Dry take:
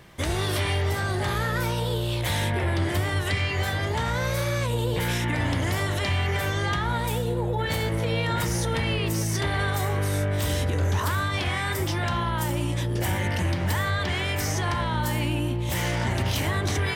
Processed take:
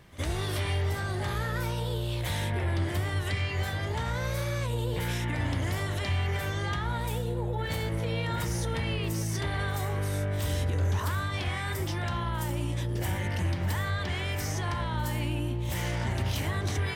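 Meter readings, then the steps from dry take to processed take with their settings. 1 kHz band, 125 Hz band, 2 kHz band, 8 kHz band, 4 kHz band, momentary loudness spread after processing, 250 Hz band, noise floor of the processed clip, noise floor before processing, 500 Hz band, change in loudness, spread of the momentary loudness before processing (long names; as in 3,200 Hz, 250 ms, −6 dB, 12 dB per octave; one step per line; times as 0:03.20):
−6.5 dB, −3.5 dB, −6.5 dB, −6.5 dB, −6.5 dB, 2 LU, −5.5 dB, −33 dBFS, −28 dBFS, −6.0 dB, −5.0 dB, 2 LU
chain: low-shelf EQ 100 Hz +6 dB
echo ahead of the sound 66 ms −19 dB
level −6.5 dB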